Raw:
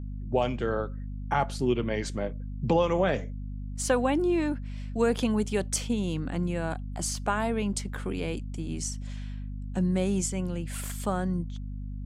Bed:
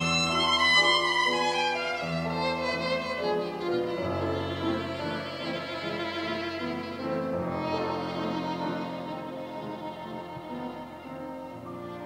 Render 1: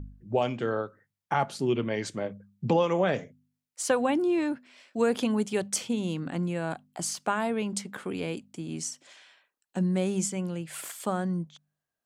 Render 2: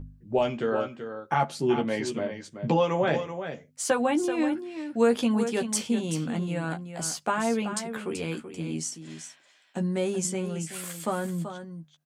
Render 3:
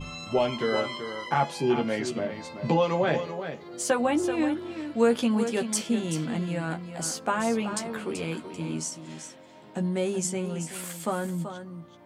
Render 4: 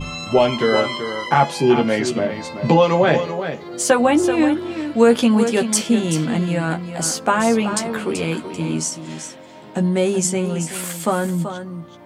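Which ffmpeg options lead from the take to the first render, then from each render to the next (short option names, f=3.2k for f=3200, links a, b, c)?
-af "bandreject=f=50:t=h:w=4,bandreject=f=100:t=h:w=4,bandreject=f=150:t=h:w=4,bandreject=f=200:t=h:w=4,bandreject=f=250:t=h:w=4"
-filter_complex "[0:a]asplit=2[a][b];[b]adelay=13,volume=-5dB[c];[a][c]amix=inputs=2:normalize=0,asplit=2[d][e];[e]aecho=0:1:382:0.335[f];[d][f]amix=inputs=2:normalize=0"
-filter_complex "[1:a]volume=-14dB[a];[0:a][a]amix=inputs=2:normalize=0"
-af "volume=9.5dB,alimiter=limit=-2dB:level=0:latency=1"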